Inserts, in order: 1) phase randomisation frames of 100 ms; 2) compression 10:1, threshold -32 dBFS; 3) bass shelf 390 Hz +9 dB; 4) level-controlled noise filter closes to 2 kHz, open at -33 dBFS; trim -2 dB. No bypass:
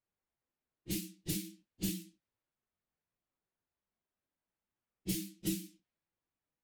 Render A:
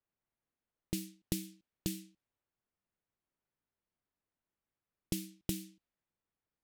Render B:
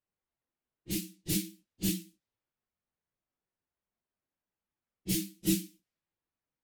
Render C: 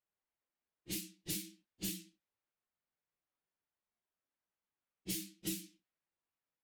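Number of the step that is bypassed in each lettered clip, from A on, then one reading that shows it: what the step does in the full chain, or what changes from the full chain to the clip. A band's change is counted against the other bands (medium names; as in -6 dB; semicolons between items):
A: 1, crest factor change +5.0 dB; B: 2, mean gain reduction 3.0 dB; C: 3, 125 Hz band -7.0 dB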